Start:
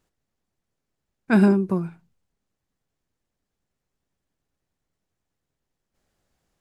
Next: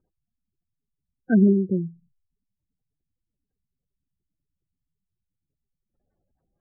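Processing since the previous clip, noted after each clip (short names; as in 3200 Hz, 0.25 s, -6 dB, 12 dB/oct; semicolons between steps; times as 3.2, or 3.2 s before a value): LPF 3000 Hz 6 dB/oct; spectral gate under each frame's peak -15 dB strong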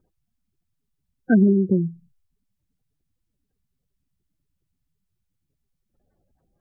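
compressor 3:1, threshold -21 dBFS, peak gain reduction 6.5 dB; gain +6.5 dB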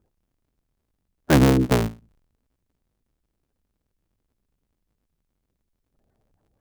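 cycle switcher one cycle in 3, inverted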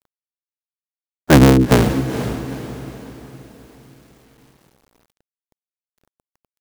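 diffused feedback echo 0.463 s, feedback 44%, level -10 dB; bit-crush 10-bit; gain +6.5 dB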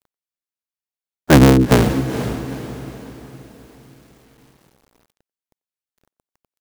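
speakerphone echo 90 ms, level -29 dB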